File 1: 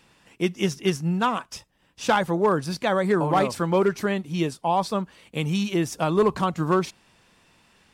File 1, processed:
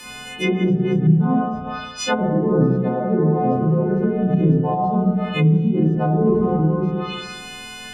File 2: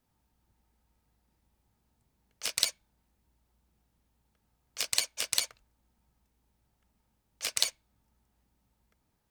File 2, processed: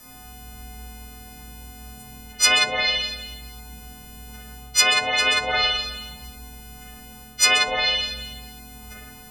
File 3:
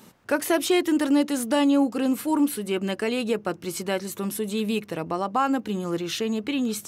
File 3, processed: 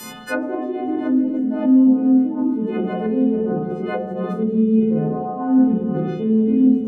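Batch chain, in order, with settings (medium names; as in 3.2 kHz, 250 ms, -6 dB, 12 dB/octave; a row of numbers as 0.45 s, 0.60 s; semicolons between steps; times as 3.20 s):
partials quantised in pitch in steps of 3 st; reverse; compression 16:1, threshold -29 dBFS; reverse; spring tank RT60 1.2 s, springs 31/50 ms, chirp 75 ms, DRR -6.5 dB; low-pass that closes with the level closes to 380 Hz, closed at -25 dBFS; normalise loudness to -19 LUFS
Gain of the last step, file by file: +14.0 dB, +24.5 dB, +10.5 dB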